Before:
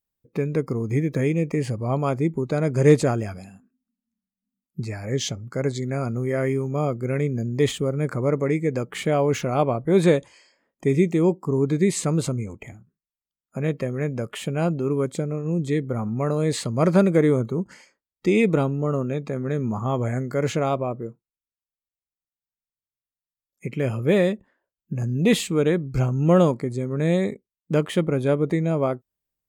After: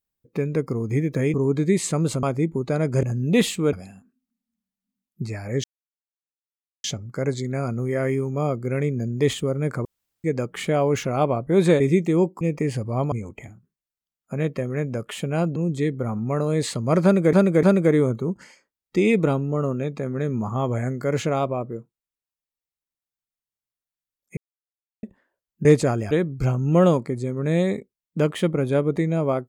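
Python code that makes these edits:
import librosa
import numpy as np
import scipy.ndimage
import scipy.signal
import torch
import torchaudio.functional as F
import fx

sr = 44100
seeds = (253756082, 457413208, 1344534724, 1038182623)

y = fx.edit(x, sr, fx.swap(start_s=1.34, length_s=0.71, other_s=11.47, other_length_s=0.89),
    fx.swap(start_s=2.85, length_s=0.46, other_s=24.95, other_length_s=0.7),
    fx.insert_silence(at_s=5.22, length_s=1.2),
    fx.room_tone_fill(start_s=8.23, length_s=0.39),
    fx.cut(start_s=10.18, length_s=0.68),
    fx.cut(start_s=14.8, length_s=0.66),
    fx.repeat(start_s=16.93, length_s=0.3, count=3),
    fx.silence(start_s=23.67, length_s=0.66), tone=tone)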